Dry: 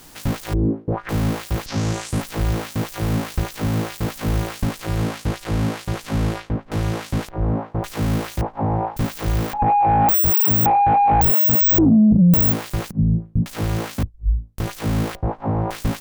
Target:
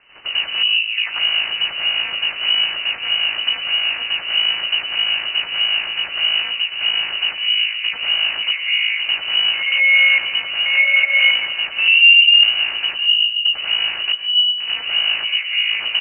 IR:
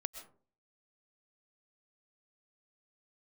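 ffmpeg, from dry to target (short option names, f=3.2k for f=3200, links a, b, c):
-filter_complex "[0:a]aecho=1:1:313|626|939:0.1|0.044|0.0194,asplit=2[a][b];[1:a]atrim=start_sample=2205,adelay=93[c];[b][c]afir=irnorm=-1:irlink=0,volume=8dB[d];[a][d]amix=inputs=2:normalize=0,lowpass=f=2.6k:t=q:w=0.5098,lowpass=f=2.6k:t=q:w=0.6013,lowpass=f=2.6k:t=q:w=0.9,lowpass=f=2.6k:t=q:w=2.563,afreqshift=-3000,volume=-5dB"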